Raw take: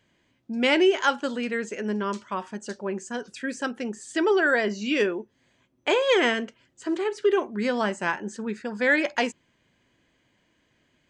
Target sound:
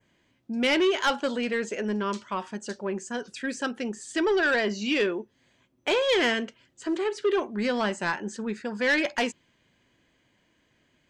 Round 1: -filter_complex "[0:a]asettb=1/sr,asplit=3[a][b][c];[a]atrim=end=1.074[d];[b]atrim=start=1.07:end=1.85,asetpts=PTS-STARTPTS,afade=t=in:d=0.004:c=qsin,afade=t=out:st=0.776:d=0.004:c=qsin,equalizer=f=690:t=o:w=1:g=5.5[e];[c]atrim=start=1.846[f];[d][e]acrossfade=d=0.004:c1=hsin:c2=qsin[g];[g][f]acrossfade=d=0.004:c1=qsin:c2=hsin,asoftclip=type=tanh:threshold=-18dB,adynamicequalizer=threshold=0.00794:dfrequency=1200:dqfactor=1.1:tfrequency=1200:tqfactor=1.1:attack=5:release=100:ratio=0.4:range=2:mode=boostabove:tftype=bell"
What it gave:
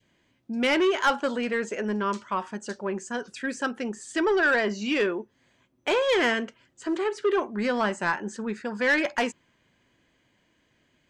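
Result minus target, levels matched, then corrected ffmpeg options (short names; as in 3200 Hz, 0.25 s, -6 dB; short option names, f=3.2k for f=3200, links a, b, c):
4000 Hz band -3.0 dB
-filter_complex "[0:a]asettb=1/sr,asplit=3[a][b][c];[a]atrim=end=1.074[d];[b]atrim=start=1.07:end=1.85,asetpts=PTS-STARTPTS,afade=t=in:d=0.004:c=qsin,afade=t=out:st=0.776:d=0.004:c=qsin,equalizer=f=690:t=o:w=1:g=5.5[e];[c]atrim=start=1.846[f];[d][e]acrossfade=d=0.004:c1=hsin:c2=qsin[g];[g][f]acrossfade=d=0.004:c1=qsin:c2=hsin,asoftclip=type=tanh:threshold=-18dB,adynamicequalizer=threshold=0.00794:dfrequency=3800:dqfactor=1.1:tfrequency=3800:tqfactor=1.1:attack=5:release=100:ratio=0.4:range=2:mode=boostabove:tftype=bell"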